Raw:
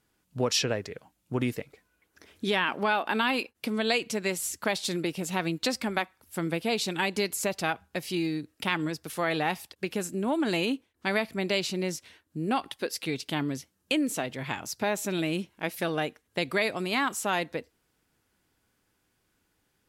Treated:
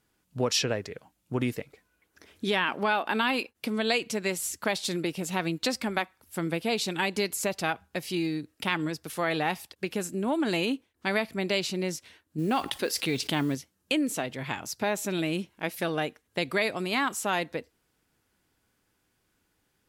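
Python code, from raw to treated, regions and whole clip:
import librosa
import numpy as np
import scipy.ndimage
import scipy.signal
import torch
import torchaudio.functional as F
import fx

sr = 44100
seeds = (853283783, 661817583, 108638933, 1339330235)

y = fx.chain(x, sr, fx.mod_noise(seeds[0], snr_db=29),
    fx.env_flatten(amount_pct=50), at=(12.38, 13.55))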